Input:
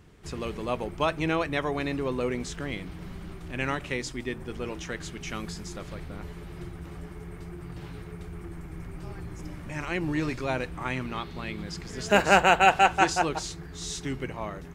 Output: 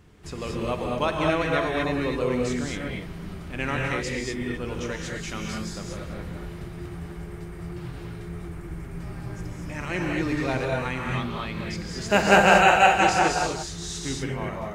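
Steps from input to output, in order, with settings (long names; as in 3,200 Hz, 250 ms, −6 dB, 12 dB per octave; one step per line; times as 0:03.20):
reverb whose tail is shaped and stops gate 260 ms rising, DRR −1 dB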